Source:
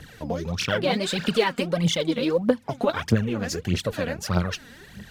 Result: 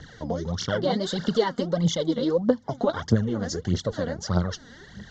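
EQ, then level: steep low-pass 7100 Hz 72 dB/oct; dynamic EQ 2200 Hz, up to -7 dB, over -42 dBFS, Q 0.9; Butterworth band-stop 2500 Hz, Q 3; 0.0 dB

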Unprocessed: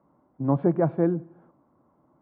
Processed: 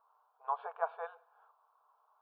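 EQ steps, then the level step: brick-wall FIR high-pass 440 Hz; bell 840 Hz -2.5 dB 2.4 oct; fixed phaser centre 2000 Hz, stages 6; +3.5 dB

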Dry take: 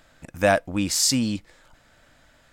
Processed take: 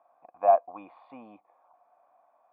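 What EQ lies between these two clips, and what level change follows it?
vocal tract filter a; HPF 360 Hz 12 dB/oct; +8.5 dB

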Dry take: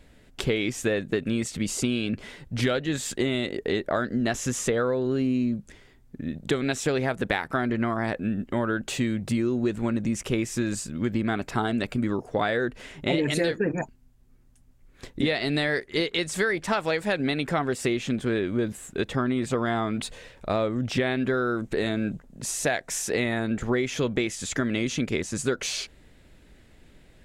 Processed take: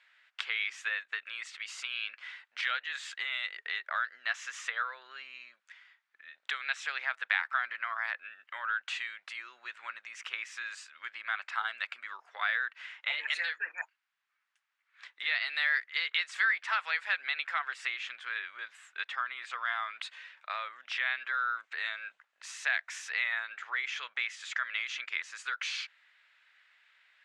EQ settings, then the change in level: HPF 1300 Hz 24 dB/oct; LPF 2700 Hz 12 dB/oct; +2.0 dB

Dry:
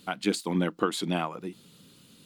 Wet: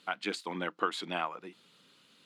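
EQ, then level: band-pass 1600 Hz, Q 0.64; 0.0 dB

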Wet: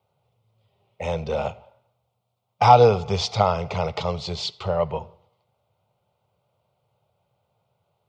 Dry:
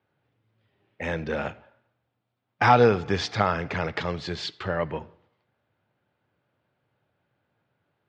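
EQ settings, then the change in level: fixed phaser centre 700 Hz, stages 4; +6.5 dB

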